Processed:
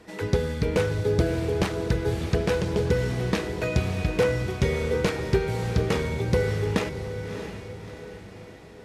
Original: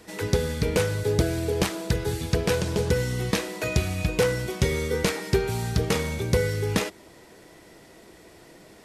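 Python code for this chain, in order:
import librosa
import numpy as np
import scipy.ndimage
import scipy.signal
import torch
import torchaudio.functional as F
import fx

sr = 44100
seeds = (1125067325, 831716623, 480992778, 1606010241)

p1 = fx.lowpass(x, sr, hz=2800.0, slope=6)
y = p1 + fx.echo_diffused(p1, sr, ms=642, feedback_pct=49, wet_db=-9.0, dry=0)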